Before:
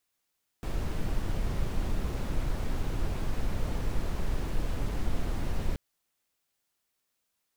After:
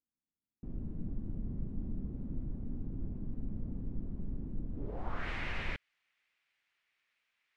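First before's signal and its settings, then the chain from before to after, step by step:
noise brown, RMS -28 dBFS 5.13 s
tilt shelf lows -9 dB, about 1300 Hz; low-pass sweep 240 Hz -> 2200 Hz, 4.72–5.29

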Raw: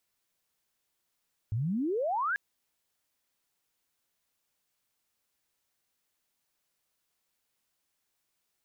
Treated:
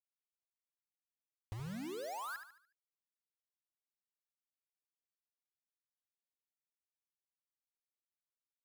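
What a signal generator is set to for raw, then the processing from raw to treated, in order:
chirp logarithmic 100 Hz -> 1700 Hz -27.5 dBFS -> -27 dBFS 0.84 s
compressor 2.5:1, threshold -48 dBFS; bit-crush 8-bit; on a send: feedback echo 73 ms, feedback 42%, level -8.5 dB

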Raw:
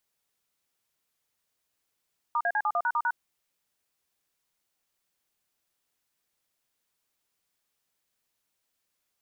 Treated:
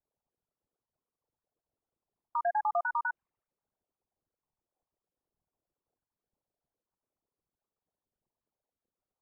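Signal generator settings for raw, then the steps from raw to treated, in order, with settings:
DTMF "*AC71#*#", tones 57 ms, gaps 43 ms, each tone -26 dBFS
formant sharpening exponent 3; low-pass opened by the level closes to 900 Hz, open at -31 dBFS; LPF 1200 Hz 12 dB/oct

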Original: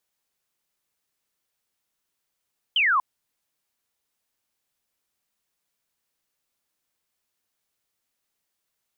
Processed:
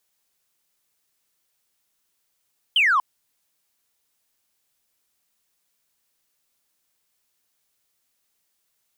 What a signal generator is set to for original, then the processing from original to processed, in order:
laser zap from 3200 Hz, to 980 Hz, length 0.24 s sine, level -17.5 dB
high shelf 3400 Hz +5 dB; in parallel at -8 dB: soft clip -27 dBFS

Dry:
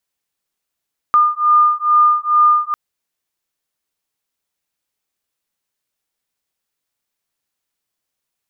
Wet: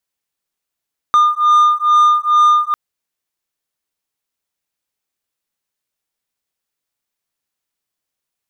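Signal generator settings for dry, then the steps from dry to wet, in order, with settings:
beating tones 1210 Hz, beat 2.3 Hz, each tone -13 dBFS 1.60 s
sample leveller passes 1

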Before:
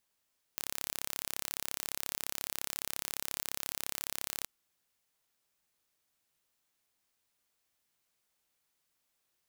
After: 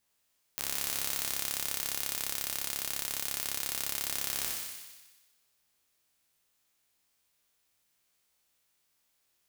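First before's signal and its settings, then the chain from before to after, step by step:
pulse train 34.4/s, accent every 0, -8.5 dBFS 3.88 s
spectral trails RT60 1.06 s; bell 64 Hz +2.5 dB 1.6 oct; thin delay 61 ms, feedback 70%, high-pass 1900 Hz, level -4 dB

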